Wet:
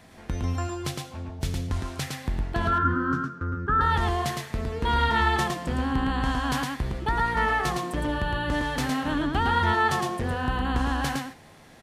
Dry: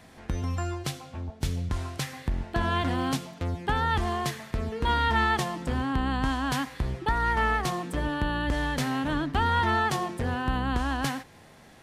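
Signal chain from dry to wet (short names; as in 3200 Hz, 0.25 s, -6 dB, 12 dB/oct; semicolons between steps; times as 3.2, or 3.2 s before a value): 2.67–3.81 EQ curve 410 Hz 0 dB, 750 Hz -23 dB, 1400 Hz +15 dB, 2100 Hz -17 dB, 3800 Hz -22 dB, 5800 Hz -17 dB, 11000 Hz -28 dB; on a send: echo 0.111 s -3.5 dB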